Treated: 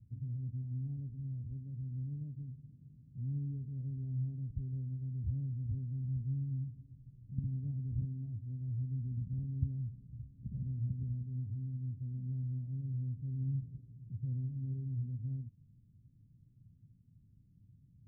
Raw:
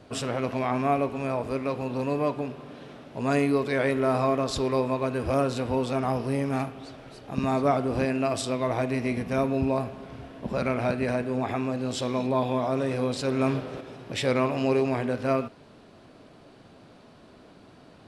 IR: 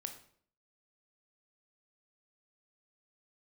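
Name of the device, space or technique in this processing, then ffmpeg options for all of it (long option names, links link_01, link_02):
the neighbour's flat through the wall: -af "lowpass=frequency=150:width=0.5412,lowpass=frequency=150:width=1.3066,equalizer=frequency=110:width_type=o:width=0.88:gain=5.5,volume=-5dB"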